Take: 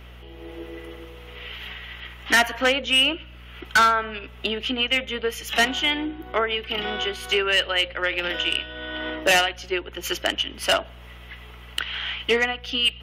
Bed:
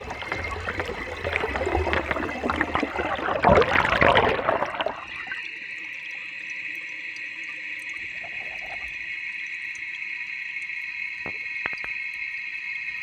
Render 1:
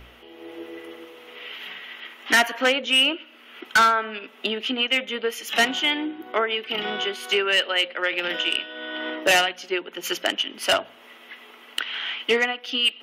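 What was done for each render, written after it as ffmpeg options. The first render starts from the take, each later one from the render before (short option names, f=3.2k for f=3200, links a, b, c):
-af "bandreject=f=60:t=h:w=4,bandreject=f=120:t=h:w=4,bandreject=f=180:t=h:w=4"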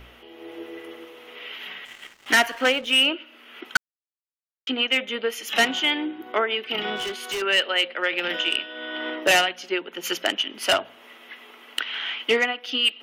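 -filter_complex "[0:a]asettb=1/sr,asplit=3[a][b][c];[a]atrim=end=1.854[d];[b]atrim=start=1.85:end=3.03,asetpts=PTS-STARTPTS,afade=t=in:d=0.004:c=qsin,afade=t=out:st=1.176:d=0.004:c=qsin,aeval=exprs='sgn(val(0))*max(abs(val(0))-0.00596,0)':c=same[e];[c]atrim=start=3.026[f];[d][e]acrossfade=d=0.004:c1=hsin:c2=qsin[g];[g][f]acrossfade=d=0.004:c1=qsin:c2=hsin,asettb=1/sr,asplit=3[h][i][j];[h]atrim=end=6.964[k];[i]atrim=start=6.96:end=7.42,asetpts=PTS-STARTPTS,afade=t=in:d=0.004:c=qsin,afade=t=out:st=0.456:d=0.004:c=qsin,asoftclip=type=hard:threshold=-26dB[l];[j]atrim=start=7.416[m];[k][l]acrossfade=d=0.004:c1=hsin:c2=qsin[n];[n][m]acrossfade=d=0.004:c1=qsin:c2=hsin,asplit=3[o][p][q];[o]atrim=end=3.77,asetpts=PTS-STARTPTS,afade=t=out:st=3.766:d=0.004:c=hsin[r];[p]atrim=start=3.77:end=4.67,asetpts=PTS-STARTPTS,volume=0[s];[q]atrim=start=4.67,asetpts=PTS-STARTPTS,afade=t=in:d=0.004:c=hsin[t];[r][s][t]concat=n=3:v=0:a=1"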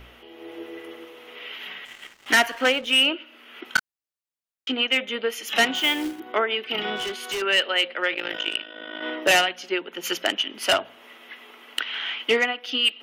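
-filter_complex "[0:a]asettb=1/sr,asplit=3[a][b][c];[a]atrim=end=3.644[d];[b]atrim=start=3.64:end=4.72,asetpts=PTS-STARTPTS,afade=t=in:d=0.004:c=qsin,afade=t=out:st=1.076:d=0.004:c=qsin,asplit=2[e][f];[f]adelay=25,volume=-8dB[g];[e][g]amix=inputs=2:normalize=0,atrim=end_sample=47628[h];[c]atrim=start=4.716[i];[d][h]acrossfade=d=0.004:c1=hsin:c2=qsin[j];[j][i]acrossfade=d=0.004:c1=qsin:c2=hsin,asettb=1/sr,asplit=3[k][l][m];[k]atrim=end=5.754[n];[l]atrim=start=5.75:end=6.2,asetpts=PTS-STARTPTS,afade=t=in:d=0.004:c=qsin,afade=t=out:st=0.446:d=0.004:c=qsin,acrusher=bits=3:mode=log:mix=0:aa=0.000001[o];[m]atrim=start=6.196[p];[n][o]acrossfade=d=0.004:c1=hsin:c2=qsin[q];[q][p]acrossfade=d=0.004:c1=qsin:c2=hsin,asplit=3[r][s][t];[r]afade=t=out:st=8.13:d=0.02[u];[s]tremolo=f=53:d=0.889,afade=t=in:st=8.13:d=0.02,afade=t=out:st=9.01:d=0.02[v];[t]afade=t=in:st=9.01:d=0.02[w];[u][v][w]amix=inputs=3:normalize=0"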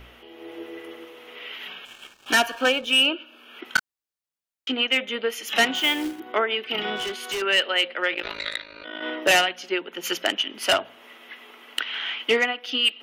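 -filter_complex "[0:a]asettb=1/sr,asplit=3[a][b][c];[a]atrim=end=1.684[d];[b]atrim=start=1.68:end=3.59,asetpts=PTS-STARTPTS,afade=t=in:d=0.004:c=qsin,afade=t=out:st=1.906:d=0.004:c=qsin,asuperstop=centerf=2000:order=12:qfactor=5.6[e];[c]atrim=start=3.586[f];[d][e]acrossfade=d=0.004:c1=hsin:c2=qsin[g];[g][f]acrossfade=d=0.004:c1=qsin:c2=hsin,asplit=3[h][i][j];[h]afade=t=out:st=8.22:d=0.02[k];[i]aeval=exprs='val(0)*sin(2*PI*920*n/s)':c=same,afade=t=in:st=8.22:d=0.02,afade=t=out:st=8.83:d=0.02[l];[j]afade=t=in:st=8.83:d=0.02[m];[k][l][m]amix=inputs=3:normalize=0"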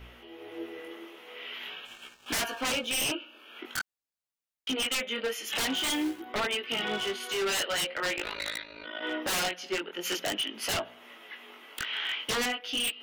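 -af "flanger=delay=16.5:depth=7:speed=0.46,aeval=exprs='0.0631*(abs(mod(val(0)/0.0631+3,4)-2)-1)':c=same"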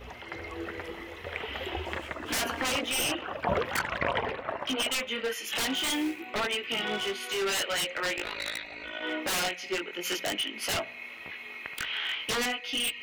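-filter_complex "[1:a]volume=-11.5dB[a];[0:a][a]amix=inputs=2:normalize=0"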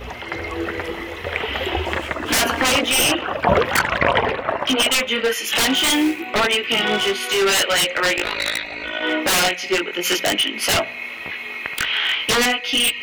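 -af "volume=12dB,alimiter=limit=-3dB:level=0:latency=1"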